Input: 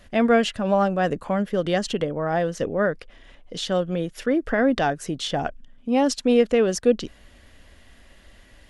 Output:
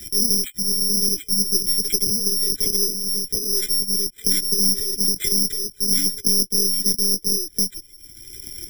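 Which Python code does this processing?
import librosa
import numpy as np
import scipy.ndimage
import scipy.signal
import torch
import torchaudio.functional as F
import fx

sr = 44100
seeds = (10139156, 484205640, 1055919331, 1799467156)

y = scipy.signal.sosfilt(scipy.signal.butter(4, 46.0, 'highpass', fs=sr, output='sos'), x)
y = fx.low_shelf(y, sr, hz=170.0, db=2.5)
y = fx.rider(y, sr, range_db=3, speed_s=2.0)
y = fx.cheby_harmonics(y, sr, harmonics=(6, 7), levels_db=(-38, -28), full_scale_db=-7.5)
y = fx.brickwall_bandstop(y, sr, low_hz=490.0, high_hz=3000.0)
y = y + 10.0 ** (-3.0 / 20.0) * np.pad(y, (int(728 * sr / 1000.0), 0))[:len(y)]
y = fx.lpc_monotone(y, sr, seeds[0], pitch_hz=200.0, order=8)
y = (np.kron(y[::8], np.eye(8)[0]) * 8)[:len(y)]
y = fx.band_squash(y, sr, depth_pct=70)
y = y * 10.0 ** (-6.5 / 20.0)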